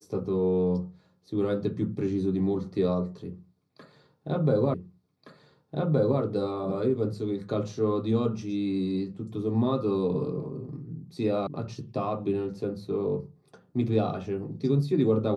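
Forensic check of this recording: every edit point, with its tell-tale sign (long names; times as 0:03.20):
0:04.74: the same again, the last 1.47 s
0:11.47: cut off before it has died away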